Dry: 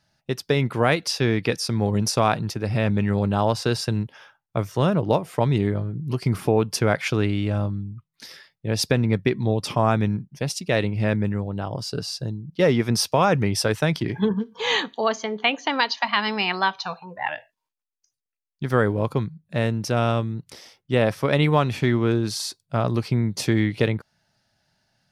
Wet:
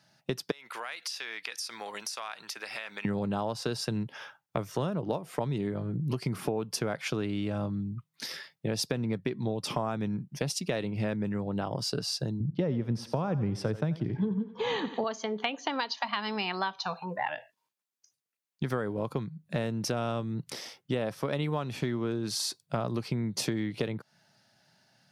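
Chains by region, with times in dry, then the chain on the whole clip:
0:00.51–0:03.05: high-pass filter 1,300 Hz + downward compressor 12 to 1, threshold −36 dBFS
0:12.40–0:15.04: RIAA equalisation playback + feedback echo with a high-pass in the loop 87 ms, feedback 48%, high-pass 320 Hz, level −14 dB
whole clip: high-pass filter 120 Hz 24 dB per octave; dynamic equaliser 2,100 Hz, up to −4 dB, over −39 dBFS, Q 1.8; downward compressor 6 to 1, threshold −32 dBFS; level +3.5 dB

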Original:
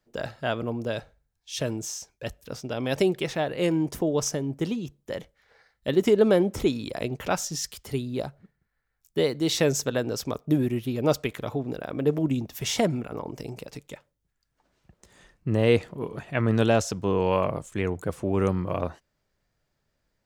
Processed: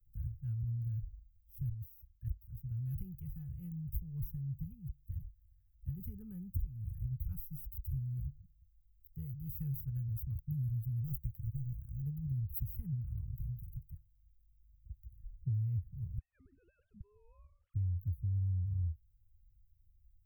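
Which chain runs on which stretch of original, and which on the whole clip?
0:01.69–0:02.57: parametric band 1,700 Hz +14 dB 0.27 octaves + output level in coarse steps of 10 dB
0:11.04–0:12.02: mu-law and A-law mismatch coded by A + double-tracking delay 16 ms −12 dB
0:16.18–0:17.74: three sine waves on the formant tracks + level that may fall only so fast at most 80 dB per second
whole clip: inverse Chebyshev band-stop filter 280–8,200 Hz, stop band 60 dB; high-shelf EQ 11,000 Hz −4 dB; downward compressor 6 to 1, threshold −47 dBFS; level +14.5 dB

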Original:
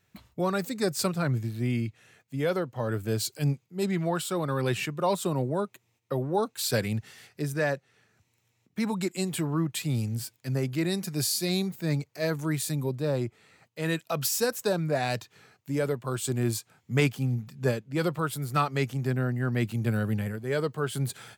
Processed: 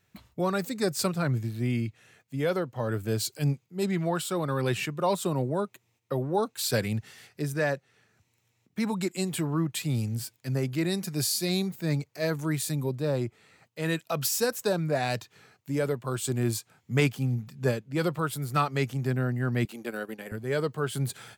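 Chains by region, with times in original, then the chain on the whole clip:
0:19.65–0:20.32: high-pass filter 280 Hz 24 dB per octave + transient designer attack −1 dB, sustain −12 dB
whole clip: no processing

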